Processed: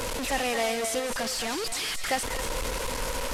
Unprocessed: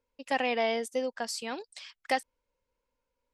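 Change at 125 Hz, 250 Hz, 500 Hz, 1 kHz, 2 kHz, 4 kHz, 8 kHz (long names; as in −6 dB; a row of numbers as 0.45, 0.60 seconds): can't be measured, +3.5 dB, +2.5 dB, +2.5 dB, +4.5 dB, +8.5 dB, +13.5 dB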